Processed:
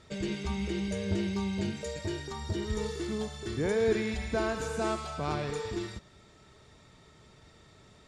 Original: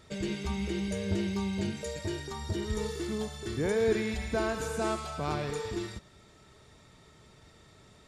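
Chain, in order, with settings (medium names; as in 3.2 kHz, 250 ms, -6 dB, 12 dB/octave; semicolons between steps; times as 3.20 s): low-pass 8.7 kHz 12 dB/octave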